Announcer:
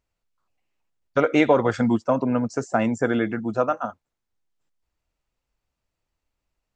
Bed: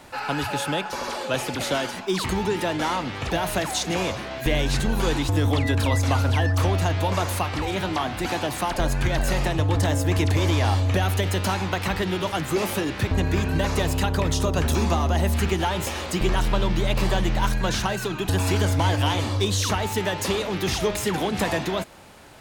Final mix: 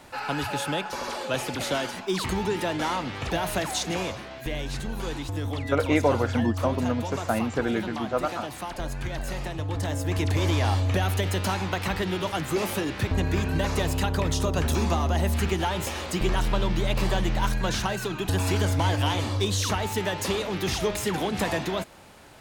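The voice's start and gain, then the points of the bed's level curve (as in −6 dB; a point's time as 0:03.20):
4.55 s, −4.5 dB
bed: 0:03.84 −2.5 dB
0:04.49 −9 dB
0:09.59 −9 dB
0:10.45 −2.5 dB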